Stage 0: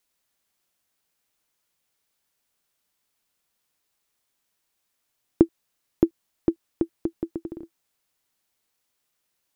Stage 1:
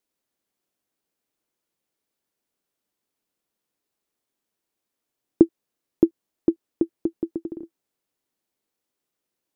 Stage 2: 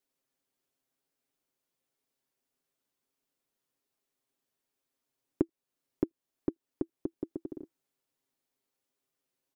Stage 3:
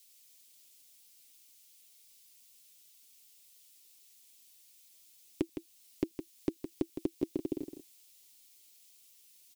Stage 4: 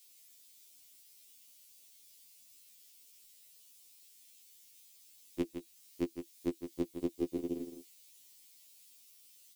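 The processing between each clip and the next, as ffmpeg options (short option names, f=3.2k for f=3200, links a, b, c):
-af "equalizer=f=320:t=o:w=2.1:g=11,volume=-8dB"
-af "aecho=1:1:7.5:0.65,acompressor=threshold=-33dB:ratio=1.5,volume=-4.5dB"
-filter_complex "[0:a]alimiter=limit=-23dB:level=0:latency=1:release=35,aexciter=amount=7.3:drive=5.8:freq=2.2k,asplit=2[a][b];[b]aecho=0:1:162:0.355[c];[a][c]amix=inputs=2:normalize=0,volume=4dB"
-af "afftfilt=real='re*2*eq(mod(b,4),0)':imag='im*2*eq(mod(b,4),0)':win_size=2048:overlap=0.75,volume=3dB"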